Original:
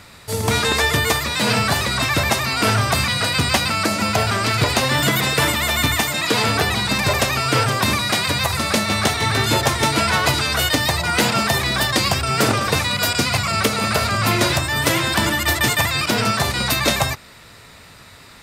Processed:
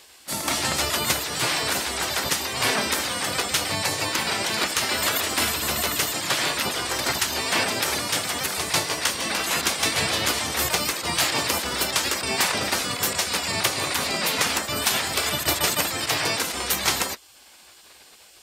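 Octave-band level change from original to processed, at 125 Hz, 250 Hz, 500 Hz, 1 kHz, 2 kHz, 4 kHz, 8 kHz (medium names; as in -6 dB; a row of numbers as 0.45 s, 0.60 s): -15.0 dB, -10.0 dB, -7.0 dB, -7.0 dB, -6.0 dB, -4.0 dB, 0.0 dB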